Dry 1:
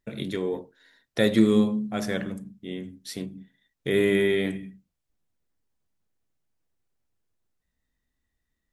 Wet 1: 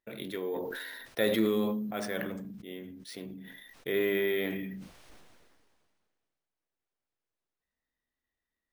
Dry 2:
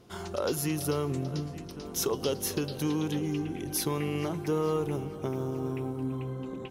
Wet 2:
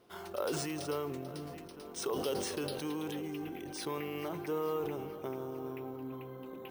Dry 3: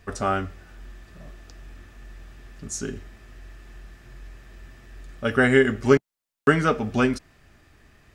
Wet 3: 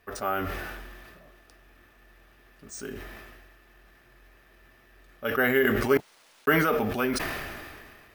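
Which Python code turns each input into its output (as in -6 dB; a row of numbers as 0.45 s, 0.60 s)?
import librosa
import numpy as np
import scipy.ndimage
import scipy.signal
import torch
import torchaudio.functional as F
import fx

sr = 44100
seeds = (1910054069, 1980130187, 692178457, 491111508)

y = fx.bass_treble(x, sr, bass_db=-12, treble_db=-4)
y = np.repeat(scipy.signal.resample_poly(y, 1, 3), 3)[:len(y)]
y = fx.sustainer(y, sr, db_per_s=29.0)
y = y * 10.0 ** (-4.5 / 20.0)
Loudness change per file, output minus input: -7.0 LU, -6.5 LU, -4.5 LU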